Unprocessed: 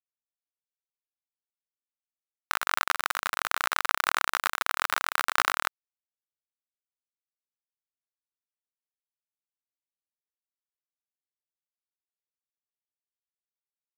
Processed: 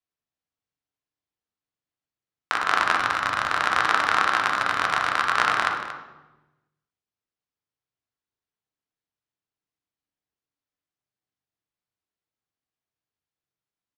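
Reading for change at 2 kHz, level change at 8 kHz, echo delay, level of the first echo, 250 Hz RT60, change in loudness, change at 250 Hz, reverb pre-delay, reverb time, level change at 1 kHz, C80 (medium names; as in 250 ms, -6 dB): +5.5 dB, -3.0 dB, 231 ms, -12.5 dB, 1.5 s, +5.5 dB, +11.0 dB, 3 ms, 1.1 s, +7.0 dB, 6.0 dB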